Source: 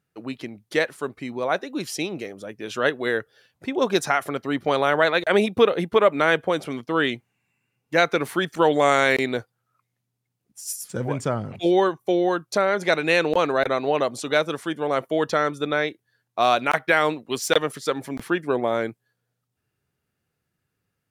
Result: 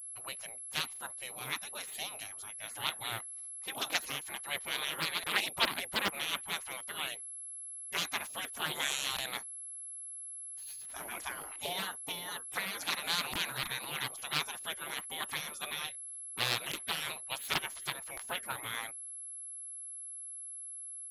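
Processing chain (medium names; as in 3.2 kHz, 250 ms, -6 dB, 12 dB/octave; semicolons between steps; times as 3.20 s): spectral gate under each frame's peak -20 dB weak; whistle 11 kHz -42 dBFS; loudspeaker Doppler distortion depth 0.59 ms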